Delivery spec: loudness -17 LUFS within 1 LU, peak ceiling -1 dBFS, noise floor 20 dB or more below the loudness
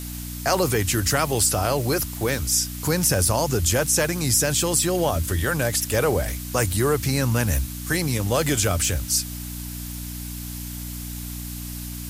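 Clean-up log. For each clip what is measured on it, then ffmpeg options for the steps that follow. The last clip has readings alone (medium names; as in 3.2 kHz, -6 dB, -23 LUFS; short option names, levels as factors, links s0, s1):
hum 60 Hz; highest harmonic 300 Hz; hum level -31 dBFS; noise floor -33 dBFS; noise floor target -43 dBFS; loudness -22.5 LUFS; peak level -5.5 dBFS; loudness target -17.0 LUFS
-> -af "bandreject=f=60:t=h:w=4,bandreject=f=120:t=h:w=4,bandreject=f=180:t=h:w=4,bandreject=f=240:t=h:w=4,bandreject=f=300:t=h:w=4"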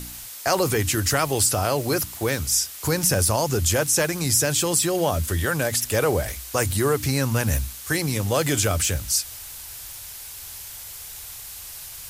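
hum not found; noise floor -38 dBFS; noise floor target -42 dBFS
-> -af "afftdn=nr=6:nf=-38"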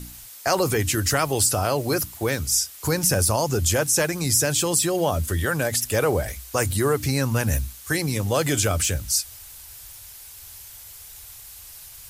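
noise floor -43 dBFS; loudness -22.0 LUFS; peak level -6.5 dBFS; loudness target -17.0 LUFS
-> -af "volume=1.78"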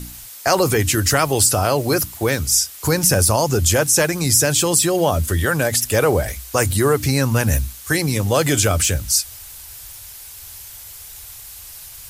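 loudness -17.0 LUFS; peak level -1.5 dBFS; noise floor -38 dBFS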